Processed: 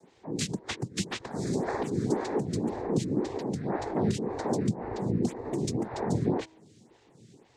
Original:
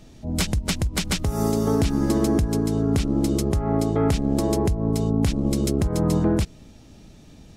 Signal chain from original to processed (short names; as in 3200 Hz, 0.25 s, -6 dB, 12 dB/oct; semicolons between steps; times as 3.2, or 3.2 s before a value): noise vocoder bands 6; de-hum 319.8 Hz, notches 3; photocell phaser 1.9 Hz; gain -4 dB